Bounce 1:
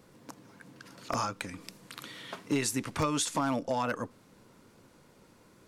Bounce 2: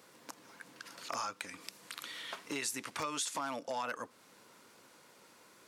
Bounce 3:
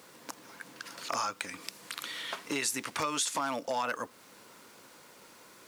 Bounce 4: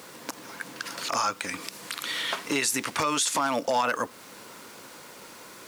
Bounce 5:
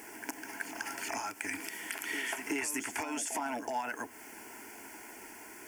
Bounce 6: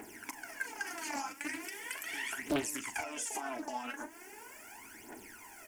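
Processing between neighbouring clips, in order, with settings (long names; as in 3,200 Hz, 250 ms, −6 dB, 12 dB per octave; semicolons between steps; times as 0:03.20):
high-pass filter 980 Hz 6 dB per octave; in parallel at +1 dB: brickwall limiter −27 dBFS, peak gain reduction 7.5 dB; on the sum: downward compressor 1.5 to 1, threshold −43 dBFS, peak gain reduction 7 dB; level −2 dB
bit reduction 11 bits; level +5.5 dB
brickwall limiter −24.5 dBFS, peak gain reduction 7 dB; level +9 dB
downward compressor, threshold −29 dBFS, peak gain reduction 8.5 dB; phaser with its sweep stopped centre 790 Hz, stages 8; backwards echo 374 ms −8.5 dB
phase shifter 0.39 Hz, delay 3.9 ms, feedback 75%; double-tracking delay 40 ms −13 dB; highs frequency-modulated by the lows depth 0.61 ms; level −5.5 dB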